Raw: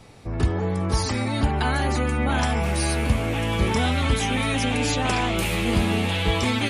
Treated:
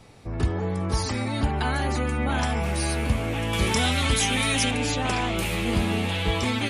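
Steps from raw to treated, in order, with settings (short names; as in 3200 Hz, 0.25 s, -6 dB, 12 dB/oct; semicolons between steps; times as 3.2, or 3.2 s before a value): 3.53–4.71 high shelf 2700 Hz +10.5 dB; gain -2.5 dB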